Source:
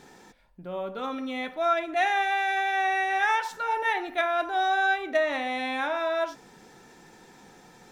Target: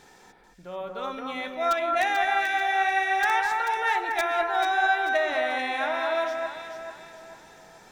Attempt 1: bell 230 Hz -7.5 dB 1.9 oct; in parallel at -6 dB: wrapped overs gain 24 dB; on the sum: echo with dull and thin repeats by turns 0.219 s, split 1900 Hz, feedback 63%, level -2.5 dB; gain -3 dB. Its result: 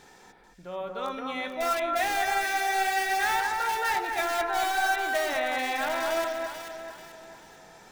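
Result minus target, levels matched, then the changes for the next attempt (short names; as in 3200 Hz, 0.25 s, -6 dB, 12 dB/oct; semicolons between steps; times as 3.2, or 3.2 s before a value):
wrapped overs: distortion +28 dB
change: wrapped overs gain 15 dB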